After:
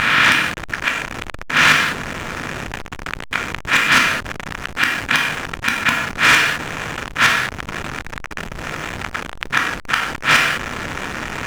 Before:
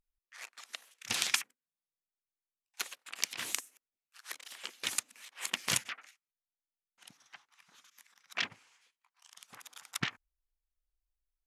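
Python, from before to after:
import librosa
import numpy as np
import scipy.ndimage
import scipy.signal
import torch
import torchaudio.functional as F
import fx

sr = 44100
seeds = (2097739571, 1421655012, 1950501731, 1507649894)

y = fx.bin_compress(x, sr, power=0.2)
y = fx.recorder_agc(y, sr, target_db=-6.0, rise_db_per_s=51.0, max_gain_db=30)
y = scipy.signal.sosfilt(scipy.signal.butter(4, 3800.0, 'lowpass', fs=sr, output='sos'), y)
y = fx.peak_eq(y, sr, hz=1500.0, db=13.5, octaves=1.4)
y = fx.gate_flip(y, sr, shuts_db=-4.0, range_db=-34)
y = np.clip(y, -10.0 ** (-17.0 / 20.0), 10.0 ** (-17.0 / 20.0))
y = fx.rev_gated(y, sr, seeds[0], gate_ms=240, shape='falling', drr_db=2.0)
y = fx.backlash(y, sr, play_db=-34.0)
y = fx.env_flatten(y, sr, amount_pct=50)
y = y * librosa.db_to_amplitude(6.5)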